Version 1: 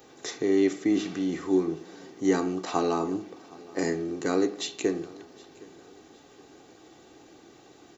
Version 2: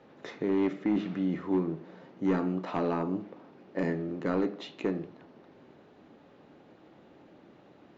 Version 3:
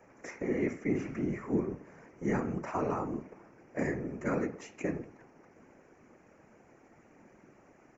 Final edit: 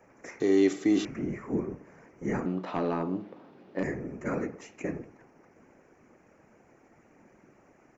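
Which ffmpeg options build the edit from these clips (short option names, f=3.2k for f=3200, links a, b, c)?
-filter_complex "[2:a]asplit=3[a][b][c];[a]atrim=end=0.402[d];[0:a]atrim=start=0.398:end=1.052[e];[b]atrim=start=1.048:end=2.462[f];[1:a]atrim=start=2.458:end=3.832[g];[c]atrim=start=3.828[h];[d][e]acrossfade=d=0.004:c1=hsin:c2=hsin[i];[i][f]acrossfade=d=0.004:c1=hsin:c2=hsin[j];[j][g]acrossfade=d=0.004:c1=hsin:c2=hsin[k];[k][h]acrossfade=d=0.004:c1=hsin:c2=hsin"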